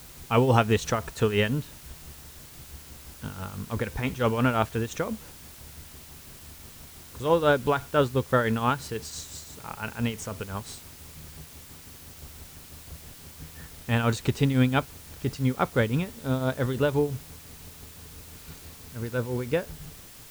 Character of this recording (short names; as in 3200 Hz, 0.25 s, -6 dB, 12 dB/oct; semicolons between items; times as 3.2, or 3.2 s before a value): tremolo triangle 5.9 Hz, depth 70%; a quantiser's noise floor 8-bit, dither triangular